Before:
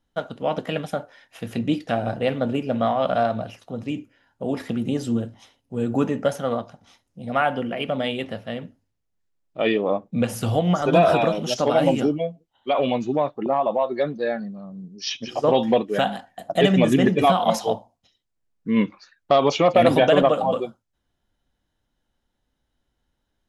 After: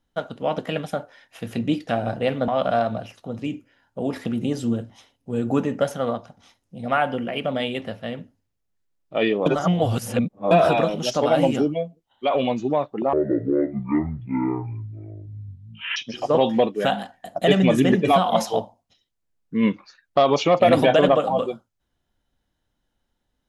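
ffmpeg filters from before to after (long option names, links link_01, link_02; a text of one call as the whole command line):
ffmpeg -i in.wav -filter_complex "[0:a]asplit=6[link_01][link_02][link_03][link_04][link_05][link_06];[link_01]atrim=end=2.482[link_07];[link_02]atrim=start=2.918:end=9.902[link_08];[link_03]atrim=start=9.898:end=10.952,asetpts=PTS-STARTPTS,areverse[link_09];[link_04]atrim=start=10.948:end=13.574[link_10];[link_05]atrim=start=13.57:end=15.1,asetpts=PTS-STARTPTS,asetrate=23814,aresample=44100[link_11];[link_06]atrim=start=15.096[link_12];[link_07][link_08]acrossfade=duration=0.004:curve1=hsin:curve2=hsin[link_13];[link_13][link_09]acrossfade=duration=0.004:curve1=hsin:curve2=hsin[link_14];[link_14][link_10]acrossfade=duration=0.004:curve1=hsin:curve2=hsin[link_15];[link_15][link_11]acrossfade=duration=0.004:curve1=hsin:curve2=hsin[link_16];[link_16][link_12]acrossfade=duration=0.004:curve1=hsin:curve2=hsin" out.wav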